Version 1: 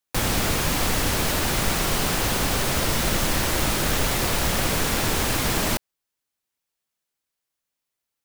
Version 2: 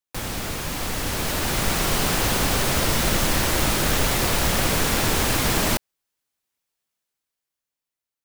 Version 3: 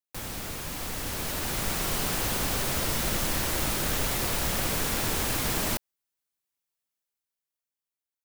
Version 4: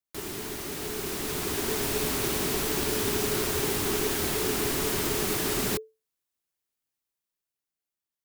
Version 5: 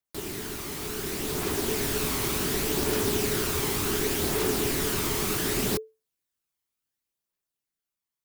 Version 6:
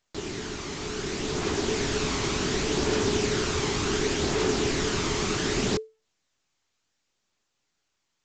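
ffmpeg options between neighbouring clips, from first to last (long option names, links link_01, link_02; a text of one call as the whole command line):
ffmpeg -i in.wav -af "dynaudnorm=framelen=310:gausssize=9:maxgain=11.5dB,volume=-6.5dB" out.wav
ffmpeg -i in.wav -af "highshelf=frequency=9000:gain=5.5,volume=-8dB" out.wav
ffmpeg -i in.wav -af "afreqshift=-440" out.wav
ffmpeg -i in.wav -af "aphaser=in_gain=1:out_gain=1:delay=1:decay=0.28:speed=0.68:type=triangular" out.wav
ffmpeg -i in.wav -af "volume=2dB" -ar 16000 -c:a pcm_mulaw out.wav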